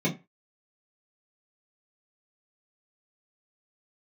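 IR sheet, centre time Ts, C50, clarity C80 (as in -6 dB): 17 ms, 15.0 dB, 22.0 dB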